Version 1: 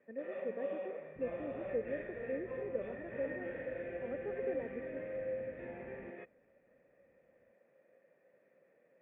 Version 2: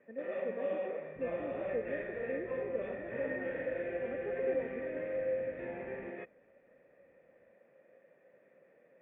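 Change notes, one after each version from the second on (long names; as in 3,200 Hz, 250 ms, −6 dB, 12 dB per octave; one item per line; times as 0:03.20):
first sound +5.0 dB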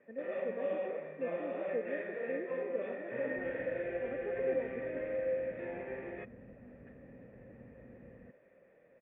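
second sound: entry +2.20 s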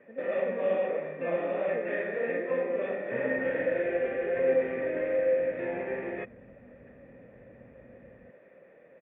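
first sound +8.5 dB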